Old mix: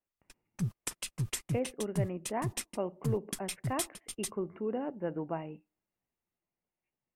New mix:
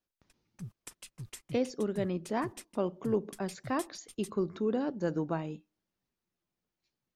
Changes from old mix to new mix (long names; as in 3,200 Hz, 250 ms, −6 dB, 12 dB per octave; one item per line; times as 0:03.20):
speech: remove Chebyshev low-pass with heavy ripple 2,900 Hz, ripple 6 dB
background −10.5 dB